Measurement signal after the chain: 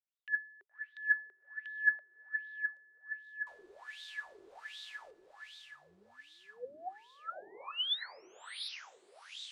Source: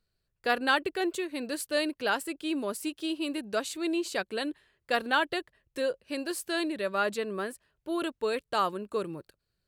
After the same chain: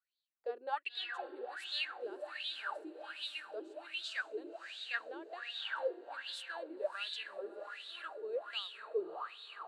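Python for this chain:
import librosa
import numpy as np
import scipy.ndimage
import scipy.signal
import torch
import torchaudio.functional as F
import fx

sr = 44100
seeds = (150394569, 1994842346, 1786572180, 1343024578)

y = fx.graphic_eq(x, sr, hz=(125, 250, 4000, 8000), db=(-10, -11, 5, 8))
y = fx.echo_diffused(y, sr, ms=566, feedback_pct=62, wet_db=-4.5)
y = fx.wah_lfo(y, sr, hz=1.3, low_hz=360.0, high_hz=3700.0, q=10.0)
y = F.gain(torch.from_numpy(y), 1.5).numpy()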